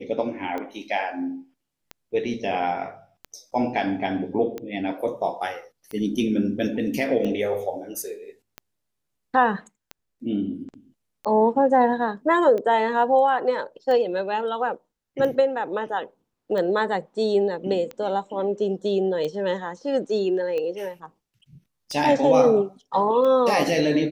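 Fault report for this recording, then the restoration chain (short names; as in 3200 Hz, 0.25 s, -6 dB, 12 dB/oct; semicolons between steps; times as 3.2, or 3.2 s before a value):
tick 45 rpm -19 dBFS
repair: de-click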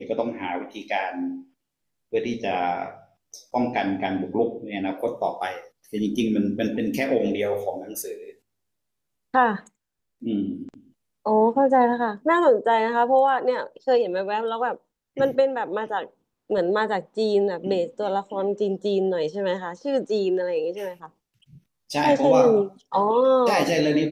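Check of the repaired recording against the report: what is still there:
none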